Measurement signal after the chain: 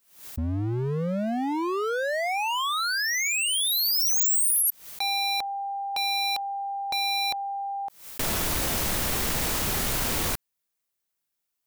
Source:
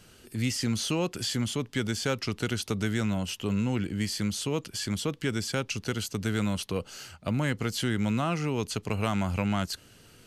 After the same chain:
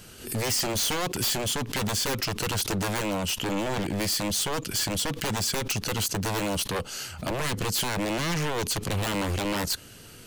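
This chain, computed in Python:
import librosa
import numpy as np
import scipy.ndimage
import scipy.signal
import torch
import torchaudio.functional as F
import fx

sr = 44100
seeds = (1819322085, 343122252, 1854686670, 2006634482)

y = 10.0 ** (-29.0 / 20.0) * (np.abs((x / 10.0 ** (-29.0 / 20.0) + 3.0) % 4.0 - 2.0) - 1.0)
y = fx.high_shelf(y, sr, hz=9600.0, db=7.5)
y = fx.pre_swell(y, sr, db_per_s=110.0)
y = y * librosa.db_to_amplitude(6.5)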